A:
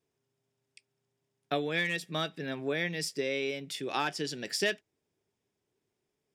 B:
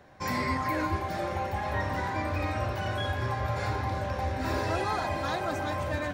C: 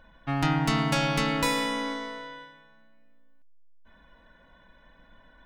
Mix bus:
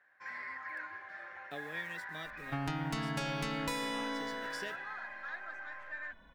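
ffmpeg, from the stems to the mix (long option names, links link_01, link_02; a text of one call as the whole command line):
ffmpeg -i stem1.wav -i stem2.wav -i stem3.wav -filter_complex "[0:a]acrusher=bits=7:mix=0:aa=0.000001,volume=-14.5dB[link_01];[1:a]bandpass=frequency=1700:width_type=q:width=5.3:csg=0,volume=-1.5dB[link_02];[2:a]adelay=2250,volume=-3dB[link_03];[link_01][link_02][link_03]amix=inputs=3:normalize=0,acompressor=threshold=-33dB:ratio=6" out.wav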